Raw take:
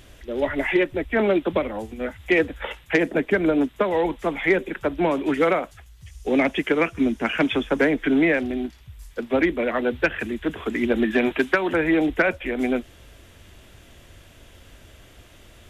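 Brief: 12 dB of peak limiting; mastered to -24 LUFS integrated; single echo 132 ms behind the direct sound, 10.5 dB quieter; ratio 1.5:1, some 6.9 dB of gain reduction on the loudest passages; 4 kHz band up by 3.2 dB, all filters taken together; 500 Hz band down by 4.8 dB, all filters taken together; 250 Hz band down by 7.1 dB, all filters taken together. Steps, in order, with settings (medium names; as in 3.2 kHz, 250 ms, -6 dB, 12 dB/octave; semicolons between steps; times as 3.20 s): peaking EQ 250 Hz -8 dB; peaking EQ 500 Hz -3.5 dB; peaking EQ 4 kHz +4.5 dB; compression 1.5:1, threshold -36 dBFS; peak limiter -25.5 dBFS; delay 132 ms -10.5 dB; trim +11.5 dB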